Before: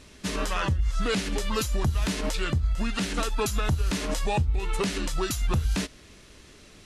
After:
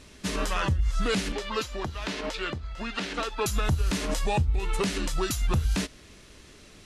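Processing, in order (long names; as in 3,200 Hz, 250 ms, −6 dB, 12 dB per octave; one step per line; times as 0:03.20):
0:01.32–0:03.46: three-way crossover with the lows and the highs turned down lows −12 dB, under 270 Hz, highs −15 dB, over 5,400 Hz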